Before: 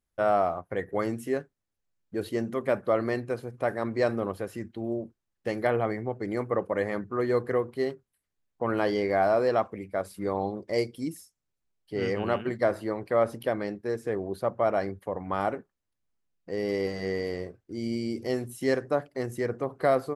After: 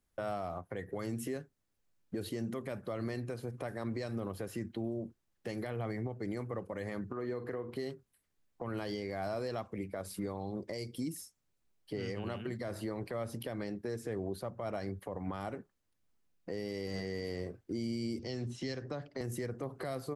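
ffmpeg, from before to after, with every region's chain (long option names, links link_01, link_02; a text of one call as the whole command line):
ffmpeg -i in.wav -filter_complex "[0:a]asettb=1/sr,asplit=3[link_01][link_02][link_03];[link_01]atrim=end=7.124[link_04];[link_02]atrim=start=7.12:end=7.76,asetpts=PTS-STARTPTS,afade=type=in:duration=0.004:curve=qsin,afade=type=out:start_time=0.636:duration=0.004:curve=qsin,equalizer=frequency=9300:width_type=o:width=0.7:gain=-7.5,acompressor=threshold=-42dB:ratio=3:attack=3.2:release=140:knee=1:detection=peak,asplit=2[link_05][link_06];[link_06]adelay=49,volume=-12dB[link_07];[link_05][link_07]amix=inputs=2:normalize=0,atrim=end_sample=28224[link_08];[link_03]atrim=start=7.756[link_09];[link_04][link_08]acrossfade=duration=0.004:curve1=hsin:curve2=qsin[link_10];[link_10][link_09]acrossfade=duration=0.004:curve1=qsin:curve2=hsin,asettb=1/sr,asplit=3[link_11][link_12][link_13];[link_11]atrim=end=18.194[link_14];[link_12]atrim=start=18.19:end=19.21,asetpts=PTS-STARTPTS,afade=type=in:duration=0.004:curve=qsin,afade=type=out:start_time=1.016:duration=0.004:curve=qsin,lowpass=frequency=5900:width=0.5412,lowpass=frequency=5900:width=1.3066,acrossover=split=140|3000[link_15][link_16][link_17];[link_16]acompressor=threshold=-47dB:ratio=2:attack=3.2:release=140:knee=2.83:detection=peak[link_18];[link_15][link_18][link_17]amix=inputs=3:normalize=0[link_19];[link_13]atrim=start=19.206[link_20];[link_14][link_19]acrossfade=duration=0.004:curve1=hsin:curve2=qsin[link_21];[link_21][link_20]acrossfade=duration=0.004:curve1=qsin:curve2=hsin,equalizer=frequency=250:width_type=o:width=1.4:gain=2,acrossover=split=160|3000[link_22][link_23][link_24];[link_23]acompressor=threshold=-35dB:ratio=4[link_25];[link_22][link_25][link_24]amix=inputs=3:normalize=0,alimiter=level_in=8dB:limit=-24dB:level=0:latency=1:release=189,volume=-8dB,volume=3.5dB" out.wav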